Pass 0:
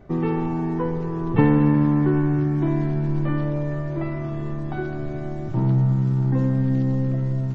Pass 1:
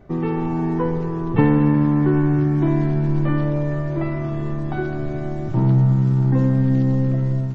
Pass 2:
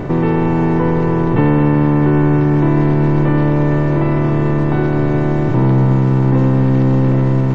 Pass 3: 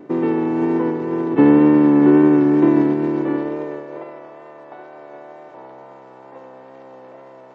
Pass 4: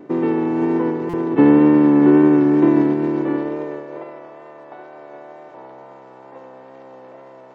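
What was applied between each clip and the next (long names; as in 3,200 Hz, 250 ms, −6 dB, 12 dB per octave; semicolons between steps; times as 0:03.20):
automatic gain control gain up to 3.5 dB
compressor on every frequency bin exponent 0.4; in parallel at −1.5 dB: brickwall limiter −11 dBFS, peak gain reduction 9 dB; on the sum: level −2.5 dB
high-pass filter sweep 290 Hz → 620 Hz, 0:03.04–0:04.39; tape wow and flutter 29 cents; expander for the loud parts 2.5 to 1, over −19 dBFS; level −1.5 dB
buffer that repeats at 0:01.09, samples 256, times 7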